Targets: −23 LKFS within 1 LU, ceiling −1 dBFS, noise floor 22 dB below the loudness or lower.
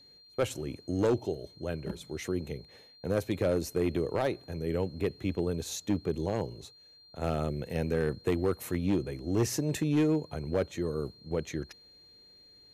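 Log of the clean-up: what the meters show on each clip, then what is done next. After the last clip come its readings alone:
share of clipped samples 0.8%; peaks flattened at −20.5 dBFS; interfering tone 4,200 Hz; level of the tone −55 dBFS; integrated loudness −32.0 LKFS; sample peak −20.5 dBFS; target loudness −23.0 LKFS
→ clipped peaks rebuilt −20.5 dBFS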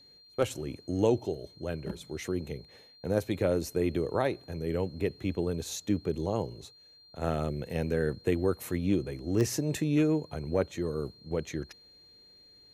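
share of clipped samples 0.0%; interfering tone 4,200 Hz; level of the tone −55 dBFS
→ notch filter 4,200 Hz, Q 30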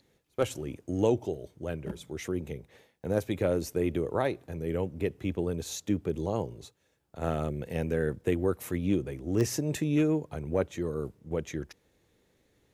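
interfering tone none found; integrated loudness −31.5 LKFS; sample peak −13.0 dBFS; target loudness −23.0 LKFS
→ level +8.5 dB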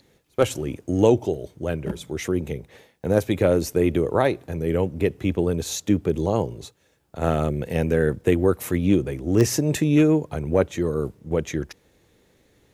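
integrated loudness −23.0 LKFS; sample peak −4.5 dBFS; background noise floor −62 dBFS

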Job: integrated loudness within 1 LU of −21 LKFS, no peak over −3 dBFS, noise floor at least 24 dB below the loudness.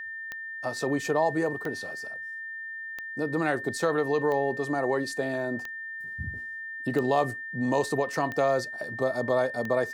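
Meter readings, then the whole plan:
number of clicks 8; interfering tone 1,800 Hz; level of the tone −35 dBFS; integrated loudness −29.0 LKFS; sample peak −12.0 dBFS; target loudness −21.0 LKFS
→ click removal
notch filter 1,800 Hz, Q 30
level +8 dB

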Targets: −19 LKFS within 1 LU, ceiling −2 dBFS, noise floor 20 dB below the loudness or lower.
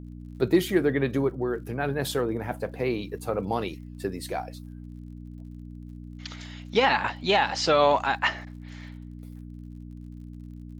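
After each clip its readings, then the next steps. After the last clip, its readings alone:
crackle rate 50 per second; mains hum 60 Hz; hum harmonics up to 300 Hz; level of the hum −39 dBFS; integrated loudness −26.0 LKFS; sample peak −9.5 dBFS; target loudness −19.0 LKFS
→ click removal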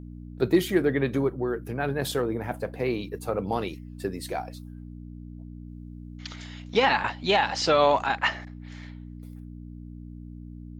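crackle rate 0.19 per second; mains hum 60 Hz; hum harmonics up to 300 Hz; level of the hum −39 dBFS
→ hum removal 60 Hz, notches 5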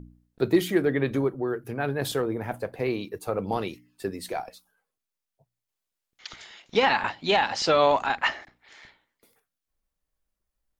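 mains hum none found; integrated loudness −26.0 LKFS; sample peak −9.5 dBFS; target loudness −19.0 LKFS
→ level +7 dB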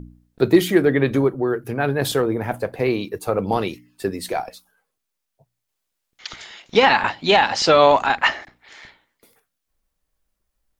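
integrated loudness −19.0 LKFS; sample peak −2.5 dBFS; background noise floor −79 dBFS

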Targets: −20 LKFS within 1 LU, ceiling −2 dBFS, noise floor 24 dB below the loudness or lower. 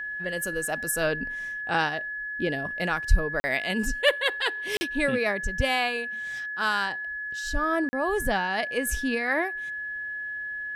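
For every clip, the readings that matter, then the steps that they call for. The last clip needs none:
number of dropouts 3; longest dropout 40 ms; interfering tone 1,700 Hz; level of the tone −31 dBFS; integrated loudness −27.0 LKFS; sample peak −8.0 dBFS; target loudness −20.0 LKFS
→ repair the gap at 0:03.40/0:04.77/0:07.89, 40 ms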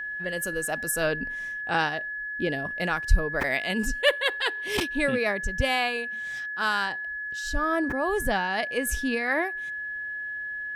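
number of dropouts 0; interfering tone 1,700 Hz; level of the tone −31 dBFS
→ notch filter 1,700 Hz, Q 30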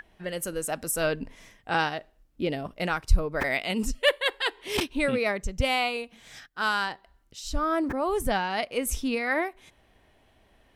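interfering tone none found; integrated loudness −28.0 LKFS; sample peak −8.5 dBFS; target loudness −20.0 LKFS
→ level +8 dB
brickwall limiter −2 dBFS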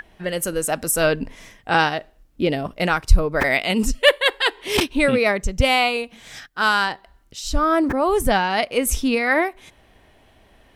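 integrated loudness −20.0 LKFS; sample peak −2.0 dBFS; background noise floor −55 dBFS

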